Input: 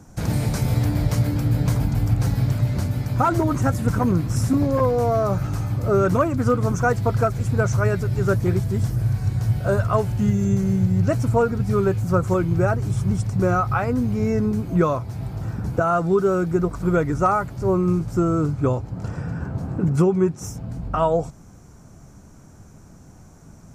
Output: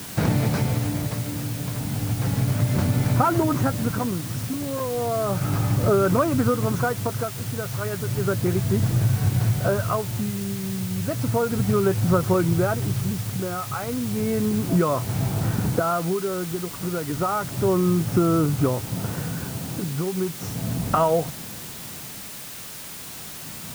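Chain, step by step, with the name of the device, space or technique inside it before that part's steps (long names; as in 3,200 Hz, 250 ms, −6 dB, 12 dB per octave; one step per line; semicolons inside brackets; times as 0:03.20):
medium wave at night (band-pass filter 120–3,800 Hz; downward compressor, threshold −25 dBFS, peak gain reduction 11 dB; amplitude tremolo 0.33 Hz, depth 67%; steady tone 9,000 Hz −60 dBFS; white noise bed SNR 14 dB)
level +8.5 dB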